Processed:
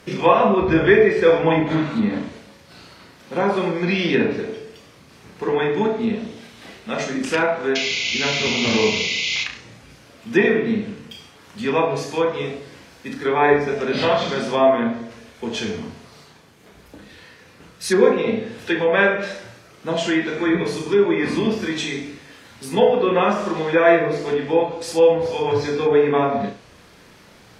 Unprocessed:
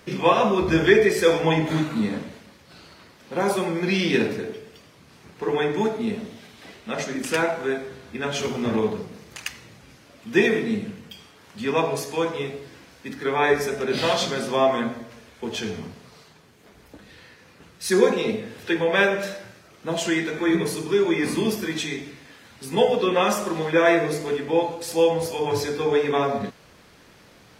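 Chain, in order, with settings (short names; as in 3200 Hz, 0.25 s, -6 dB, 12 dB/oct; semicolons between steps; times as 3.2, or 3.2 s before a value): painted sound noise, 7.75–9.44, 2000–7200 Hz -19 dBFS; flutter echo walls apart 5.9 m, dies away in 0.31 s; treble ducked by the level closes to 2500 Hz, closed at -16.5 dBFS; gain +2.5 dB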